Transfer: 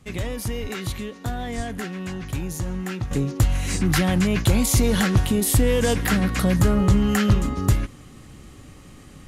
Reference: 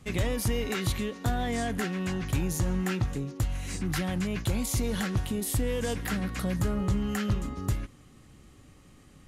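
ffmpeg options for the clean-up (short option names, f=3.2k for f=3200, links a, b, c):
-filter_complex "[0:a]asplit=3[a][b][c];[a]afade=t=out:st=0.61:d=0.02[d];[b]highpass=f=140:w=0.5412,highpass=f=140:w=1.3066,afade=t=in:st=0.61:d=0.02,afade=t=out:st=0.73:d=0.02[e];[c]afade=t=in:st=0.73:d=0.02[f];[d][e][f]amix=inputs=3:normalize=0,asplit=3[g][h][i];[g]afade=t=out:st=1.56:d=0.02[j];[h]highpass=f=140:w=0.5412,highpass=f=140:w=1.3066,afade=t=in:st=1.56:d=0.02,afade=t=out:st=1.68:d=0.02[k];[i]afade=t=in:st=1.68:d=0.02[l];[j][k][l]amix=inputs=3:normalize=0,asetnsamples=n=441:p=0,asendcmd='3.11 volume volume -10dB',volume=0dB"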